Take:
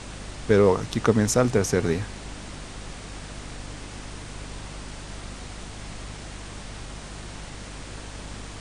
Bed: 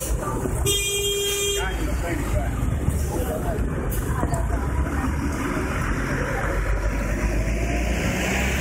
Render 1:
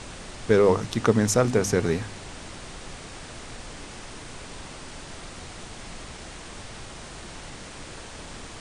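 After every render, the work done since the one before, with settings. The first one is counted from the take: de-hum 50 Hz, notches 6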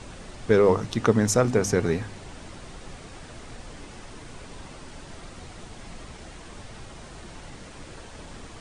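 noise reduction 6 dB, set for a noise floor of -41 dBFS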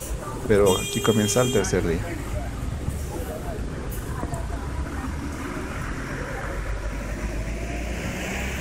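add bed -6 dB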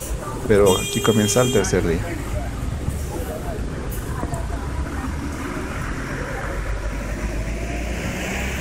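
trim +3.5 dB; peak limiter -2 dBFS, peak gain reduction 1 dB

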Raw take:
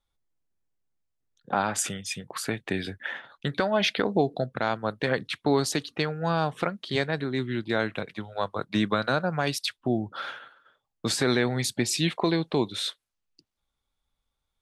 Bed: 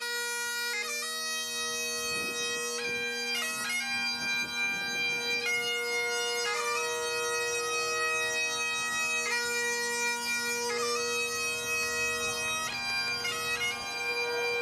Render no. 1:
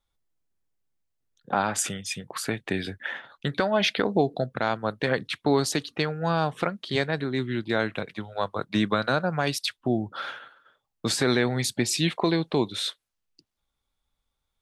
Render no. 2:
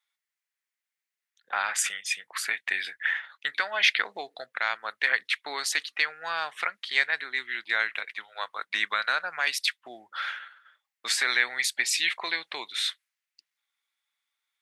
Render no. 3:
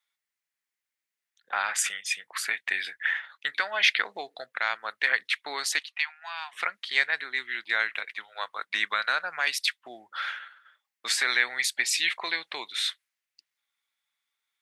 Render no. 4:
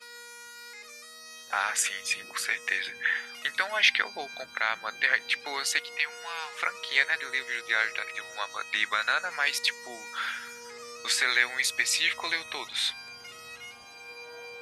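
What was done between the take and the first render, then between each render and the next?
trim +1 dB
high-pass 1.3 kHz 12 dB/octave; peaking EQ 2 kHz +10 dB 0.72 oct
5.79–6.53 s: rippled Chebyshev high-pass 670 Hz, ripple 9 dB
add bed -13 dB

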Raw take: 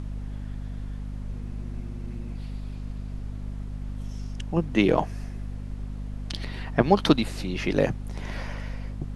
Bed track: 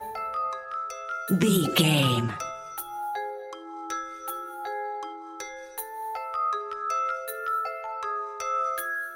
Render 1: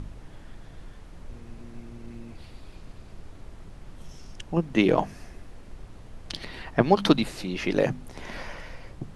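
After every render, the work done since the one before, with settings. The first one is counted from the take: de-hum 50 Hz, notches 5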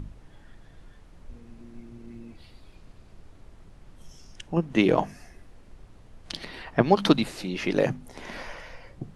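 noise print and reduce 6 dB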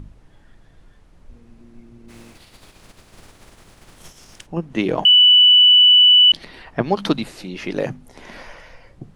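2.08–4.45 s: spectral contrast reduction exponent 0.57; 5.05–6.32 s: bleep 2.97 kHz -7 dBFS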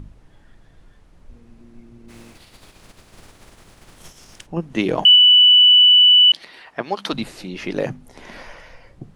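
4.60–5.16 s: treble shelf 4.3 kHz +5 dB; 5.85–7.13 s: high-pass 760 Hz 6 dB/octave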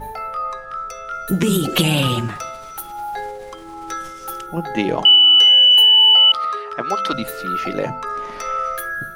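add bed track +4.5 dB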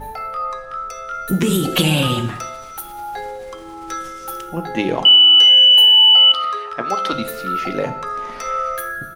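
feedback delay 86 ms, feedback 60%, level -24 dB; gated-style reverb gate 240 ms falling, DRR 9.5 dB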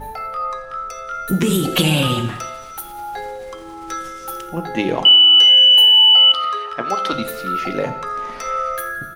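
thinning echo 86 ms, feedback 70%, level -23 dB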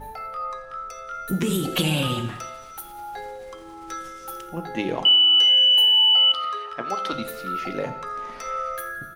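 trim -6.5 dB

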